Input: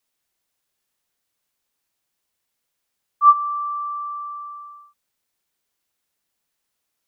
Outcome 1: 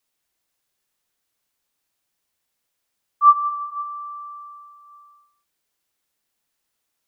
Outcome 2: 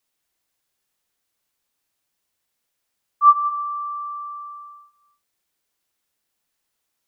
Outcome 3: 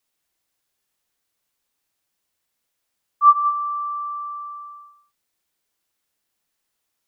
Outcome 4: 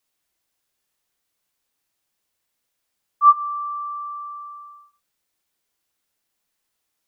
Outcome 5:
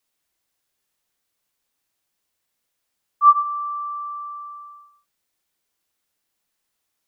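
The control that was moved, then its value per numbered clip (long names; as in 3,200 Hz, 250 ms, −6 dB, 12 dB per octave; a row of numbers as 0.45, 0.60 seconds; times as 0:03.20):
reverb whose tail is shaped and stops, gate: 540, 310, 210, 90, 140 milliseconds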